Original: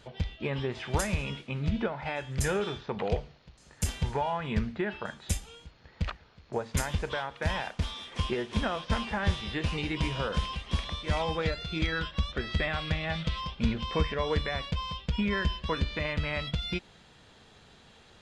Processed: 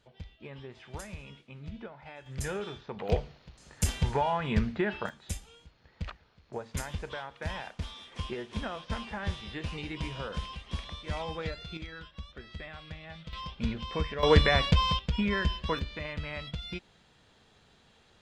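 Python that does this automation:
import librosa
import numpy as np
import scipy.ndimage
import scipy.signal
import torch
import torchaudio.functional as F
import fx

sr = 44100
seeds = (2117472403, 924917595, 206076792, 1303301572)

y = fx.gain(x, sr, db=fx.steps((0.0, -13.0), (2.26, -6.0), (3.09, 2.0), (5.09, -6.0), (11.77, -13.5), (13.33, -4.0), (14.23, 8.5), (14.99, 0.0), (15.79, -6.0)))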